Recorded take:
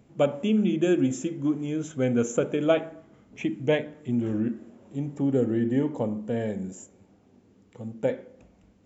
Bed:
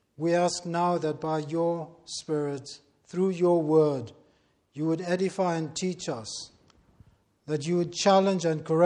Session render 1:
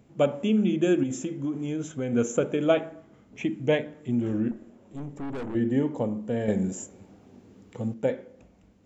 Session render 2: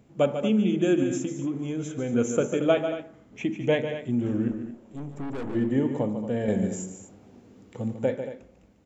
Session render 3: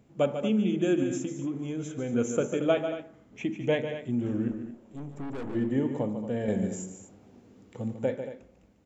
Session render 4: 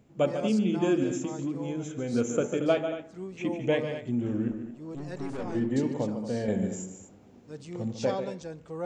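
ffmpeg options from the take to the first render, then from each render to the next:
ffmpeg -i in.wav -filter_complex "[0:a]asettb=1/sr,asplit=3[link_01][link_02][link_03];[link_01]atrim=end=1.034[link_04];[link_02]atrim=start=1.03:end=2.13,asetpts=PTS-STARTPTS,afade=type=in:duration=0.004:curve=qsin,afade=type=out:start_time=1.096:duration=0.004:curve=qsin,acompressor=threshold=-25dB:ratio=6:attack=3.2:release=140:knee=1:detection=peak[link_05];[link_03]atrim=start=2.126[link_06];[link_04][link_05]acrossfade=duration=0.004:curve1=hsin:curve2=qsin[link_07];[link_07][link_06]acrossfade=duration=0.004:curve1=qsin:curve2=hsin,asettb=1/sr,asplit=3[link_08][link_09][link_10];[link_08]atrim=end=4.514[link_11];[link_09]atrim=start=4.51:end=5.55,asetpts=PTS-STARTPTS,afade=type=in:duration=0.004:curve=qsin,afade=type=out:start_time=1.036:duration=0.004:curve=qsin,aeval=exprs='(tanh(39.8*val(0)+0.5)-tanh(0.5))/39.8':channel_layout=same[link_12];[link_10]atrim=start=5.546[link_13];[link_11][link_12]acrossfade=duration=0.004:curve1=hsin:curve2=qsin[link_14];[link_14][link_13]acrossfade=duration=0.004:curve1=qsin:curve2=hsin,asettb=1/sr,asplit=3[link_15][link_16][link_17];[link_15]atrim=end=6.484[link_18];[link_16]atrim=start=6.48:end=7.94,asetpts=PTS-STARTPTS,afade=type=in:duration=0.004:curve=qsin,afade=type=out:start_time=1.456:duration=0.004:curve=qsin,acontrast=70[link_19];[link_17]atrim=start=7.936[link_20];[link_18][link_19]acrossfade=duration=0.004:curve1=hsin:curve2=qsin[link_21];[link_21][link_20]acrossfade=duration=0.004:curve1=qsin:curve2=hsin" out.wav
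ffmpeg -i in.wav -af "aecho=1:1:145.8|227.4:0.355|0.251" out.wav
ffmpeg -i in.wav -af "volume=-3dB" out.wav
ffmpeg -i in.wav -i bed.wav -filter_complex "[1:a]volume=-13.5dB[link_01];[0:a][link_01]amix=inputs=2:normalize=0" out.wav

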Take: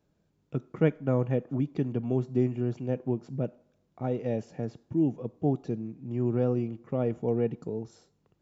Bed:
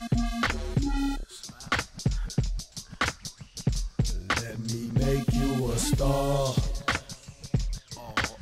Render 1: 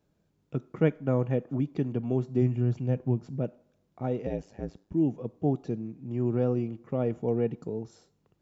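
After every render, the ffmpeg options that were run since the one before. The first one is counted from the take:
ffmpeg -i in.wav -filter_complex "[0:a]asplit=3[link_01][link_02][link_03];[link_01]afade=type=out:start_time=2.41:duration=0.02[link_04];[link_02]asubboost=boost=3.5:cutoff=180,afade=type=in:start_time=2.41:duration=0.02,afade=type=out:start_time=3.3:duration=0.02[link_05];[link_03]afade=type=in:start_time=3.3:duration=0.02[link_06];[link_04][link_05][link_06]amix=inputs=3:normalize=0,asettb=1/sr,asplit=3[link_07][link_08][link_09];[link_07]atrim=end=4.264[link_10];[link_08]atrim=start=4.26:end=4.94,asetpts=PTS-STARTPTS,afade=type=in:duration=0.004:curve=qsin,afade=type=out:start_time=0.676:duration=0.004:curve=qsin,aeval=exprs='val(0)*sin(2*PI*52*n/s)':channel_layout=same[link_11];[link_09]atrim=start=4.936[link_12];[link_10][link_11]acrossfade=duration=0.004:curve1=hsin:curve2=qsin[link_13];[link_13][link_12]acrossfade=duration=0.004:curve1=qsin:curve2=hsin" out.wav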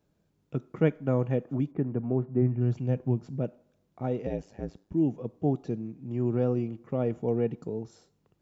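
ffmpeg -i in.wav -filter_complex "[0:a]asplit=3[link_01][link_02][link_03];[link_01]afade=type=out:start_time=1.71:duration=0.02[link_04];[link_02]lowpass=frequency=1900:width=0.5412,lowpass=frequency=1900:width=1.3066,afade=type=in:start_time=1.71:duration=0.02,afade=type=out:start_time=2.6:duration=0.02[link_05];[link_03]afade=type=in:start_time=2.6:duration=0.02[link_06];[link_04][link_05][link_06]amix=inputs=3:normalize=0" out.wav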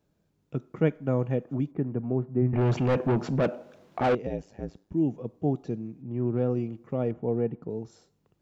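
ffmpeg -i in.wav -filter_complex "[0:a]asettb=1/sr,asplit=3[link_01][link_02][link_03];[link_01]atrim=end=2.534[link_04];[link_02]atrim=start=2.53:end=4.15,asetpts=PTS-STARTPTS,afade=type=in:duration=0.004:curve=qsin,afade=type=out:start_time=1.616:duration=0.004:curve=qsin,asplit=2[link_05][link_06];[link_06]highpass=frequency=720:poles=1,volume=30dB,asoftclip=type=tanh:threshold=-15dB[link_07];[link_05][link_07]amix=inputs=2:normalize=0,lowpass=frequency=2100:poles=1,volume=-6dB[link_08];[link_03]atrim=start=4.146[link_09];[link_04][link_08]acrossfade=duration=0.004:curve1=hsin:curve2=qsin[link_10];[link_10][link_09]acrossfade=duration=0.004:curve1=qsin:curve2=hsin,asettb=1/sr,asplit=3[link_11][link_12][link_13];[link_11]atrim=end=6.024[link_14];[link_12]atrim=start=6.02:end=6.5,asetpts=PTS-STARTPTS,afade=type=in:duration=0.004:curve=qsin,afade=type=out:start_time=0.476:duration=0.004:curve=qsin,adynamicsmooth=sensitivity=3:basefreq=2400[link_15];[link_13]atrim=start=6.496[link_16];[link_14][link_15]acrossfade=duration=0.004:curve1=hsin:curve2=qsin[link_17];[link_17][link_16]acrossfade=duration=0.004:curve1=qsin:curve2=hsin,asettb=1/sr,asplit=3[link_18][link_19][link_20];[link_18]atrim=end=7.114[link_21];[link_19]atrim=start=7.11:end=7.7,asetpts=PTS-STARTPTS,afade=type=in:duration=0.004:curve=qsin,afade=type=out:start_time=0.586:duration=0.004:curve=qsin,lowpass=1900[link_22];[link_20]atrim=start=7.696[link_23];[link_21][link_22]acrossfade=duration=0.004:curve1=hsin:curve2=qsin[link_24];[link_24][link_23]acrossfade=duration=0.004:curve1=qsin:curve2=hsin" out.wav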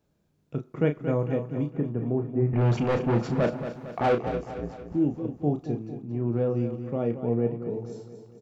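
ffmpeg -i in.wav -filter_complex "[0:a]asplit=2[link_01][link_02];[link_02]adelay=34,volume=-7.5dB[link_03];[link_01][link_03]amix=inputs=2:normalize=0,aecho=1:1:227|454|681|908|1135|1362:0.316|0.161|0.0823|0.0419|0.0214|0.0109" out.wav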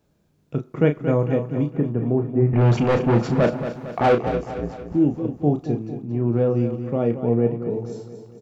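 ffmpeg -i in.wav -af "volume=6dB" out.wav

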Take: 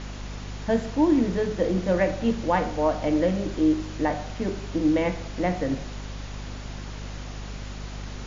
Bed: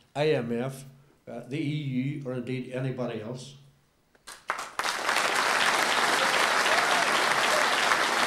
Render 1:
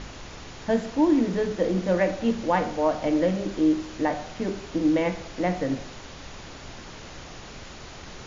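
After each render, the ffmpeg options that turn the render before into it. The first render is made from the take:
ffmpeg -i in.wav -af "bandreject=frequency=50:width_type=h:width=4,bandreject=frequency=100:width_type=h:width=4,bandreject=frequency=150:width_type=h:width=4,bandreject=frequency=200:width_type=h:width=4,bandreject=frequency=250:width_type=h:width=4" out.wav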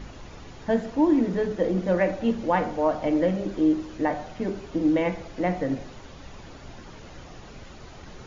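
ffmpeg -i in.wav -af "afftdn=noise_reduction=8:noise_floor=-42" out.wav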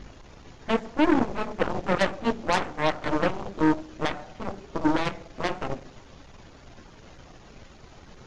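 ffmpeg -i in.wav -af "aeval=exprs='0.299*(cos(1*acos(clip(val(0)/0.299,-1,1)))-cos(1*PI/2))+0.0335*(cos(3*acos(clip(val(0)/0.299,-1,1)))-cos(3*PI/2))+0.0531*(cos(7*acos(clip(val(0)/0.299,-1,1)))-cos(7*PI/2))+0.0299*(cos(8*acos(clip(val(0)/0.299,-1,1)))-cos(8*PI/2))':channel_layout=same" out.wav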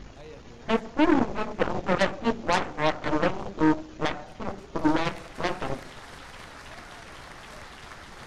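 ffmpeg -i in.wav -i bed.wav -filter_complex "[1:a]volume=-21.5dB[link_01];[0:a][link_01]amix=inputs=2:normalize=0" out.wav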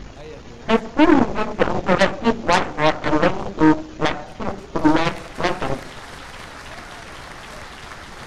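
ffmpeg -i in.wav -af "volume=7.5dB" out.wav

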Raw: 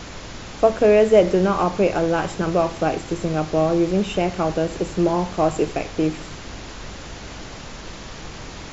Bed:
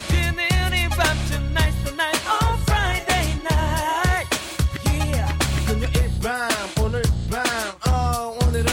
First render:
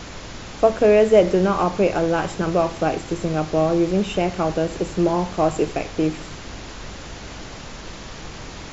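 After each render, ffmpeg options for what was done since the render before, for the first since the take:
ffmpeg -i in.wav -af anull out.wav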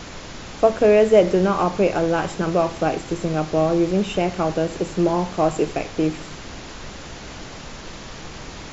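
ffmpeg -i in.wav -af "bandreject=frequency=50:width_type=h:width=4,bandreject=frequency=100:width_type=h:width=4" out.wav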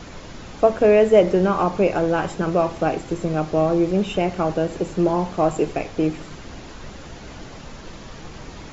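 ffmpeg -i in.wav -af "afftdn=noise_reduction=6:noise_floor=-37" out.wav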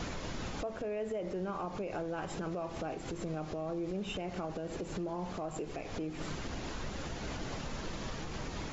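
ffmpeg -i in.wav -af "acompressor=threshold=-28dB:ratio=3,alimiter=level_in=5.5dB:limit=-24dB:level=0:latency=1:release=137,volume=-5.5dB" out.wav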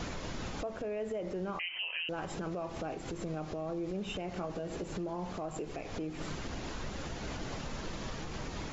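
ffmpeg -i in.wav -filter_complex "[0:a]asettb=1/sr,asplit=3[link_01][link_02][link_03];[link_01]atrim=end=1.594[link_04];[link_02]atrim=start=1.59:end=2.09,asetpts=PTS-STARTPTS,afade=type=in:duration=0.004:curve=qsin,afade=type=out:start_time=0.496:duration=0.004:curve=qsin,lowpass=frequency=2700:width_type=q:width=0.5098,lowpass=frequency=2700:width_type=q:width=0.6013,lowpass=frequency=2700:width_type=q:width=0.9,lowpass=frequency=2700:width_type=q:width=2.563,afreqshift=-3200[link_05];[link_03]atrim=start=2.086[link_06];[link_04][link_05]acrossfade=duration=0.004:curve1=hsin:curve2=qsin[link_07];[link_07][link_06]acrossfade=duration=0.004:curve1=qsin:curve2=hsin,asettb=1/sr,asplit=3[link_08][link_09][link_10];[link_08]atrim=end=4.394[link_11];[link_09]atrim=start=4.39:end=4.84,asetpts=PTS-STARTPTS,afade=type=in:duration=0.004:curve=qsin,afade=type=out:start_time=0.446:duration=0.004:curve=qsin,asplit=2[link_12][link_13];[link_13]adelay=17,volume=-7.5dB[link_14];[link_12][link_14]amix=inputs=2:normalize=0,atrim=end_sample=19845[link_15];[link_10]atrim=start=4.836[link_16];[link_11][link_15]acrossfade=duration=0.004:curve1=hsin:curve2=qsin[link_17];[link_17][link_16]acrossfade=duration=0.004:curve1=qsin:curve2=hsin" out.wav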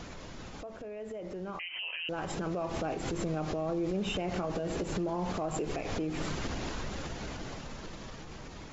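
ffmpeg -i in.wav -af "alimiter=level_in=12dB:limit=-24dB:level=0:latency=1:release=151,volume=-12dB,dynaudnorm=framelen=230:gausssize=17:maxgain=11dB" out.wav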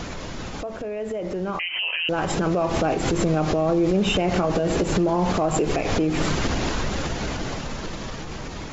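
ffmpeg -i in.wav -af "volume=12dB" out.wav

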